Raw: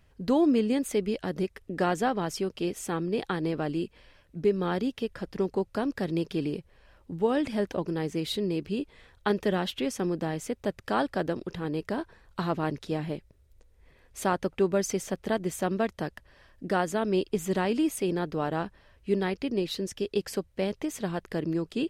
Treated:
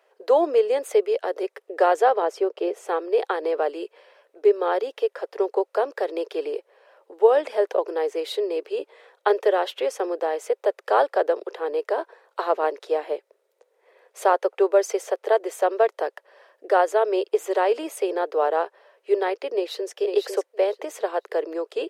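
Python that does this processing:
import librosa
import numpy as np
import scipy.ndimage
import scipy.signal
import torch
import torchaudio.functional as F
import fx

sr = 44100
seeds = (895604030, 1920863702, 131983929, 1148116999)

y = fx.tilt_eq(x, sr, slope=-2.5, at=(2.22, 2.88))
y = fx.echo_throw(y, sr, start_s=19.53, length_s=0.42, ms=500, feedback_pct=15, wet_db=-5.0)
y = scipy.signal.sosfilt(scipy.signal.butter(8, 430.0, 'highpass', fs=sr, output='sos'), y)
y = fx.tilt_shelf(y, sr, db=8.0, hz=1200.0)
y = F.gain(torch.from_numpy(y), 6.5).numpy()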